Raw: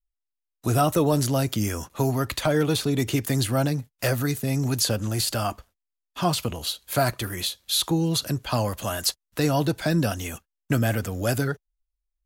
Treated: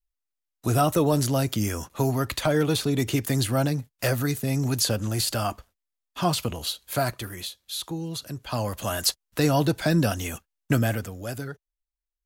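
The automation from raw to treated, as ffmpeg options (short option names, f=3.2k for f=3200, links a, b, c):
-af "volume=9.5dB,afade=t=out:st=6.62:d=1.01:silence=0.375837,afade=t=in:st=8.31:d=0.68:silence=0.316228,afade=t=out:st=10.73:d=0.45:silence=0.316228"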